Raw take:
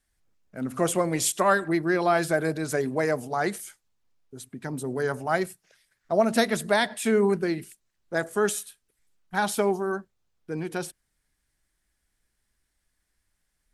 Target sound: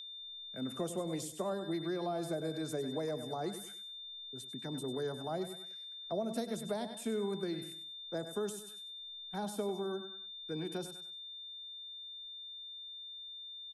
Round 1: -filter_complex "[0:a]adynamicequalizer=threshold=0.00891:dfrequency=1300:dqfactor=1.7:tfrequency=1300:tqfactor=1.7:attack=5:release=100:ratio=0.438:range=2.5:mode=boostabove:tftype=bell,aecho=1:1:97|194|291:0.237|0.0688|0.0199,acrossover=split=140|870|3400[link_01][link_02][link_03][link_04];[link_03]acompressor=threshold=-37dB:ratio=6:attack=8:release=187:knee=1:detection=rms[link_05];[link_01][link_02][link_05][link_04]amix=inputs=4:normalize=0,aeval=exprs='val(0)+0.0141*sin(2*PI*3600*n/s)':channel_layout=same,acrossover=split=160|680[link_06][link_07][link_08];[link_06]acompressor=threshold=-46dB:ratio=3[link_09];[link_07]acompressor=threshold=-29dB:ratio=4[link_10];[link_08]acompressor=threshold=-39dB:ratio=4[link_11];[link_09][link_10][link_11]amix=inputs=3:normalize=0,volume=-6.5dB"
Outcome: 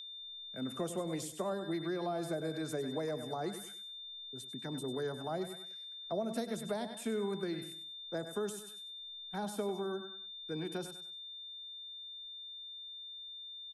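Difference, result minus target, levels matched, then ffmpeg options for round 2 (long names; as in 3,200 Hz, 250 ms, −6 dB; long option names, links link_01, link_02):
downward compressor: peak gain reduction −6 dB
-filter_complex "[0:a]adynamicequalizer=threshold=0.00891:dfrequency=1300:dqfactor=1.7:tfrequency=1300:tqfactor=1.7:attack=5:release=100:ratio=0.438:range=2.5:mode=boostabove:tftype=bell,aecho=1:1:97|194|291:0.237|0.0688|0.0199,acrossover=split=140|870|3400[link_01][link_02][link_03][link_04];[link_03]acompressor=threshold=-44dB:ratio=6:attack=8:release=187:knee=1:detection=rms[link_05];[link_01][link_02][link_05][link_04]amix=inputs=4:normalize=0,aeval=exprs='val(0)+0.0141*sin(2*PI*3600*n/s)':channel_layout=same,acrossover=split=160|680[link_06][link_07][link_08];[link_06]acompressor=threshold=-46dB:ratio=3[link_09];[link_07]acompressor=threshold=-29dB:ratio=4[link_10];[link_08]acompressor=threshold=-39dB:ratio=4[link_11];[link_09][link_10][link_11]amix=inputs=3:normalize=0,volume=-6.5dB"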